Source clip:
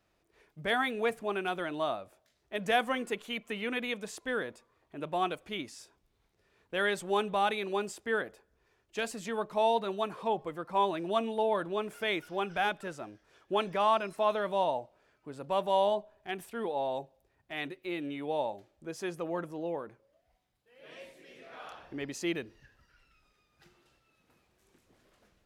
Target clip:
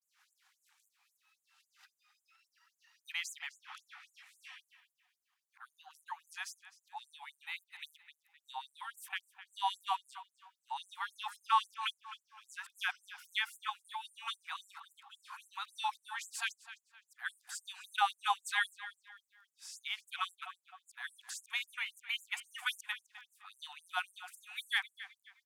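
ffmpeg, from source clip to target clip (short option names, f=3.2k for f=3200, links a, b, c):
-filter_complex "[0:a]areverse,asplit=2[a][b];[b]adelay=257,lowpass=f=4.8k:p=1,volume=-14dB,asplit=2[c][d];[d]adelay=257,lowpass=f=4.8k:p=1,volume=0.34,asplit=2[e][f];[f]adelay=257,lowpass=f=4.8k:p=1,volume=0.34[g];[a][c][e][g]amix=inputs=4:normalize=0,afftfilt=real='re*gte(b*sr/1024,710*pow(6900/710,0.5+0.5*sin(2*PI*3.7*pts/sr)))':imag='im*gte(b*sr/1024,710*pow(6900/710,0.5+0.5*sin(2*PI*3.7*pts/sr)))':win_size=1024:overlap=0.75,volume=1dB"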